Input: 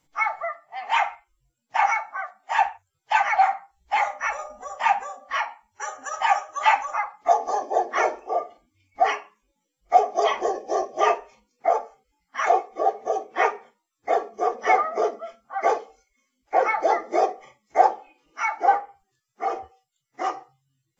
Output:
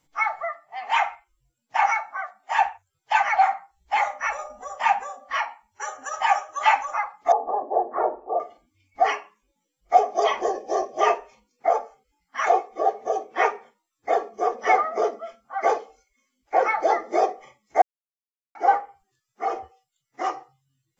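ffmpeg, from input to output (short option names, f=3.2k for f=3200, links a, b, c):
-filter_complex "[0:a]asettb=1/sr,asplit=3[a][b][c];[a]atrim=end=7.324[d];[b]atrim=start=7.32:end=8.4,asetpts=PTS-STARTPTS,afade=t=in:d=0.004:c=qsin,afade=t=out:st=1.076:d=0.004:c=qsin,lowpass=f=1.1k:w=0.5412,lowpass=f=1.1k:w=1.3066[e];[c]atrim=start=8.396[f];[d][e]acrossfade=d=0.004:c1=hsin:c2=qsin[g];[g][f]acrossfade=d=0.004:c1=qsin:c2=hsin,asplit=3[h][i][j];[h]atrim=end=17.82,asetpts=PTS-STARTPTS,afade=t=out:st=17.816:d=0.004:c=hsin[k];[i]atrim=start=17.82:end=18.55,asetpts=PTS-STARTPTS,volume=0[l];[j]atrim=start=18.55,asetpts=PTS-STARTPTS,afade=t=in:d=0.004:c=hsin[m];[k][l][m]concat=n=3:v=0:a=1"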